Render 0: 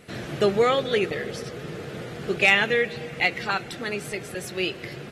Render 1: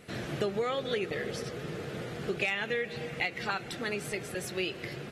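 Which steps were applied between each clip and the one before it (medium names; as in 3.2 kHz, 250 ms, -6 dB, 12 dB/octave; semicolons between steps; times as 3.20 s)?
compression 6:1, threshold -25 dBFS, peak gain reduction 11.5 dB; trim -3 dB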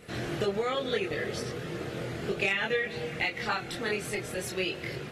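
chorus voices 4, 0.48 Hz, delay 25 ms, depth 2 ms; trim +5.5 dB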